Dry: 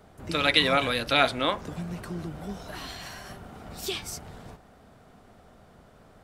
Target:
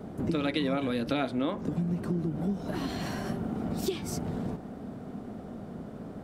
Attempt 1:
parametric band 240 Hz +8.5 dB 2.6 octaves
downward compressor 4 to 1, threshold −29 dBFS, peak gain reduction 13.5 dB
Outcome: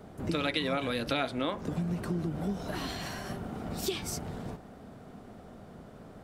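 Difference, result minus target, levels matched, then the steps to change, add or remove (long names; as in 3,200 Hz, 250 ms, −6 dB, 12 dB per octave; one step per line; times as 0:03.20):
250 Hz band −3.5 dB
change: parametric band 240 Hz +19 dB 2.6 octaves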